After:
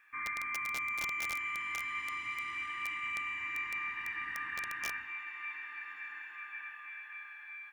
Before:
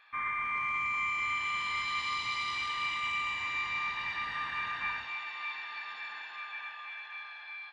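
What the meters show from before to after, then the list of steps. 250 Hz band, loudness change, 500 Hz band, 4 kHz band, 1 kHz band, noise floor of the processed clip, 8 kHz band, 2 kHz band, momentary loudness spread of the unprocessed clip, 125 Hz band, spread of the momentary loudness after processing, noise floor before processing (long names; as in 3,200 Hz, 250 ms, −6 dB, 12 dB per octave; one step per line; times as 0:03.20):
−2.0 dB, −3.5 dB, −2.5 dB, −10.0 dB, −7.0 dB, −50 dBFS, +3.0 dB, −2.5 dB, 11 LU, can't be measured, 10 LU, −46 dBFS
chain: drawn EQ curve 180 Hz 0 dB, 320 Hz +9 dB, 580 Hz −11 dB, 1,800 Hz +9 dB, 2,600 Hz +4 dB, 4,100 Hz −16 dB, 9,700 Hz +8 dB
wrap-around overflow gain 20 dB
bit-depth reduction 12 bits, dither none
level −8.5 dB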